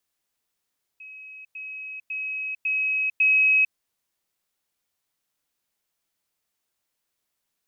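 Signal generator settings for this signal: level ladder 2.55 kHz -39.5 dBFS, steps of 6 dB, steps 5, 0.45 s 0.10 s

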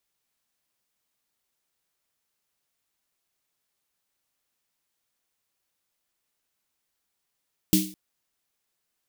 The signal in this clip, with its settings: snare drum length 0.21 s, tones 190 Hz, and 310 Hz, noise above 2.7 kHz, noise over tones -4 dB, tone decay 0.38 s, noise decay 0.39 s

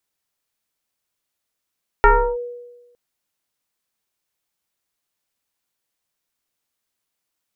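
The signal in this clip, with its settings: FM tone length 0.91 s, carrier 484 Hz, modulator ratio 0.93, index 2.6, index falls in 0.33 s linear, decay 1.15 s, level -6 dB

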